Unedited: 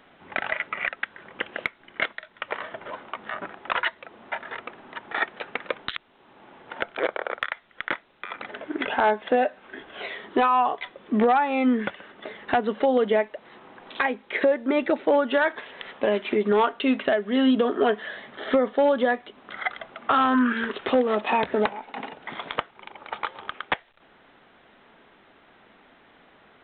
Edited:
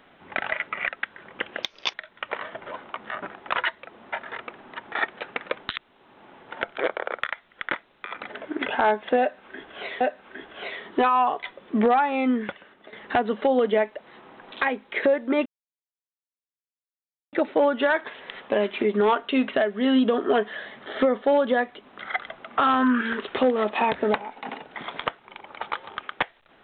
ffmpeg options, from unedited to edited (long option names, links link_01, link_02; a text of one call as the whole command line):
ffmpeg -i in.wav -filter_complex "[0:a]asplit=6[link_01][link_02][link_03][link_04][link_05][link_06];[link_01]atrim=end=1.634[link_07];[link_02]atrim=start=1.63:end=2.13,asetpts=PTS-STARTPTS,asetrate=71883,aresample=44100[link_08];[link_03]atrim=start=2.126:end=10.202[link_09];[link_04]atrim=start=9.388:end=12.31,asetpts=PTS-STARTPTS,afade=type=out:start_time=2.102:duration=0.82:silence=0.281838[link_10];[link_05]atrim=start=12.31:end=14.84,asetpts=PTS-STARTPTS,afade=type=in:duration=0.004:curve=hsin:silence=0.281838,afade=type=out:start_time=2.526:duration=0.004:curve=hsin,apad=pad_dur=1.87[link_11];[link_06]atrim=start=14.84,asetpts=PTS-STARTPTS,afade=type=in:duration=0.004:curve=hsin[link_12];[link_07][link_08]acrossfade=duration=0.004:curve1=hsin:curve2=hsin[link_13];[link_13][link_09]acrossfade=duration=0.004:curve1=hsin:curve2=hsin[link_14];[link_10][link_11][link_12]concat=n=3:v=0:a=1[link_15];[link_14][link_15]acrossfade=duration=0.004:curve1=hsin:curve2=hsin" out.wav